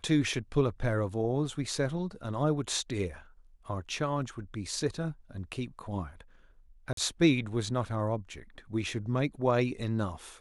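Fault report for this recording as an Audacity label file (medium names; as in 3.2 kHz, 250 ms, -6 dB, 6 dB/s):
6.930000	6.970000	dropout 43 ms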